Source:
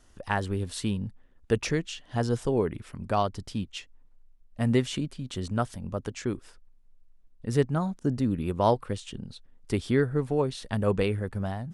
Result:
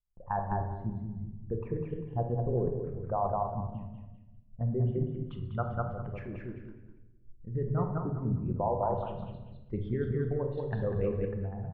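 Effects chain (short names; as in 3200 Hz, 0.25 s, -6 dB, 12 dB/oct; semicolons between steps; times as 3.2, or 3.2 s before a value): formant sharpening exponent 2; LPF 1200 Hz 24 dB/oct, from 5.26 s 2100 Hz; feedback echo 0.198 s, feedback 28%, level -3.5 dB; gate -50 dBFS, range -23 dB; bell 290 Hz -10.5 dB 0.99 oct; level quantiser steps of 10 dB; reverb RT60 1.0 s, pre-delay 6 ms, DRR 4 dB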